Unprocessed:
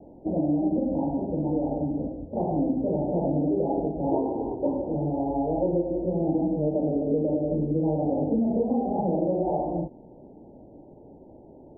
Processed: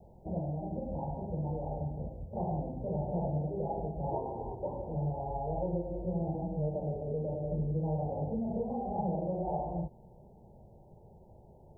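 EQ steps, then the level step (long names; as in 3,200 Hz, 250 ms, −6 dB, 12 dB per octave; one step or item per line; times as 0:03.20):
low-shelf EQ 160 Hz −5.5 dB
parametric band 580 Hz −14.5 dB 1.8 octaves
phaser with its sweep stopped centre 690 Hz, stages 4
+6.5 dB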